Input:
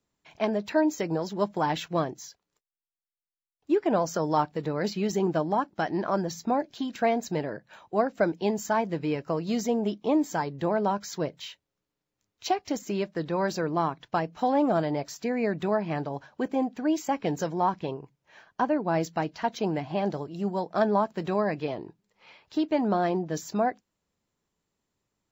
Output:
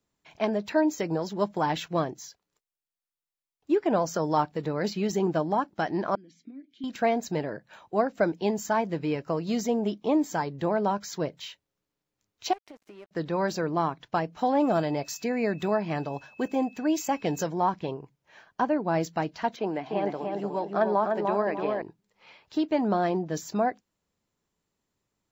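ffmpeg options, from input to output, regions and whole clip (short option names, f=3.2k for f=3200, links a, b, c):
-filter_complex "[0:a]asettb=1/sr,asplit=3[a][b][c];[a]atrim=end=6.154[d];[b]atrim=start=6.15:end=6.84,asetpts=PTS-STARTPTS,afade=t=in:d=0.004:c=qsin,afade=t=out:st=0.686:d=0.004:c=qsin,equalizer=f=9.9k:w=1.6:g=12.5,acompressor=threshold=-34dB:ratio=3:attack=3.2:release=140:knee=1:detection=peak,asplit=3[e][f][g];[e]bandpass=f=270:t=q:w=8,volume=0dB[h];[f]bandpass=f=2.29k:t=q:w=8,volume=-6dB[i];[g]bandpass=f=3.01k:t=q:w=8,volume=-9dB[j];[h][i][j]amix=inputs=3:normalize=0[k];[c]atrim=start=6.836[l];[d][k]acrossfade=d=0.004:c1=hsin:c2=qsin[m];[m][l]acrossfade=d=0.004:c1=qsin:c2=hsin,asettb=1/sr,asplit=3[n][o][p];[n]atrim=end=12.534[q];[o]atrim=start=12.53:end=13.11,asetpts=PTS-STARTPTS,afade=t=in:d=0.004:c=qsin,afade=t=out:st=0.576:d=0.004:c=qsin,acompressor=threshold=-38dB:ratio=8:attack=3.2:release=140:knee=1:detection=peak,highpass=320,lowpass=2.7k,aeval=exprs='sgn(val(0))*max(abs(val(0))-0.00188,0)':c=same[r];[p]atrim=start=13.106[s];[q][r]acrossfade=d=0.004:c1=hsin:c2=qsin[t];[t][s]acrossfade=d=0.004:c1=qsin:c2=hsin,asettb=1/sr,asplit=3[u][v][w];[u]atrim=end=14.604[x];[v]atrim=start=14.6:end=17.43,asetpts=PTS-STARTPTS,afade=t=in:d=0.004:c=qsin,afade=t=out:st=2.826:d=0.004:c=qsin,highshelf=f=5.6k:g=8.5,aeval=exprs='val(0)+0.00224*sin(2*PI*2600*n/s)':c=same[y];[w]atrim=start=17.426[z];[x][y]acrossfade=d=0.004:c1=hsin:c2=qsin[aa];[aa][z]acrossfade=d=0.004:c1=qsin:c2=hsin,asettb=1/sr,asplit=3[ab][ac][ad];[ab]atrim=end=19.564[ae];[ac]atrim=start=19.56:end=21.82,asetpts=PTS-STARTPTS,afade=t=in:d=0.004:c=qsin,afade=t=out:st=2.256:d=0.004:c=qsin,acrossover=split=3100[af][ag];[ag]acompressor=threshold=-59dB:ratio=4:attack=1:release=60[ah];[af][ah]amix=inputs=2:normalize=0,highpass=260,asplit=2[ai][aj];[aj]adelay=298,lowpass=f=2.4k:p=1,volume=-3.5dB,asplit=2[ak][al];[al]adelay=298,lowpass=f=2.4k:p=1,volume=0.36,asplit=2[am][an];[an]adelay=298,lowpass=f=2.4k:p=1,volume=0.36,asplit=2[ao][ap];[ap]adelay=298,lowpass=f=2.4k:p=1,volume=0.36,asplit=2[aq][ar];[ar]adelay=298,lowpass=f=2.4k:p=1,volume=0.36[as];[ai][ak][am][ao][aq][as]amix=inputs=6:normalize=0,atrim=end_sample=99666[at];[ad]atrim=start=21.816[au];[ae][at]acrossfade=d=0.004:c1=hsin:c2=qsin[av];[av][au]acrossfade=d=0.004:c1=qsin:c2=hsin"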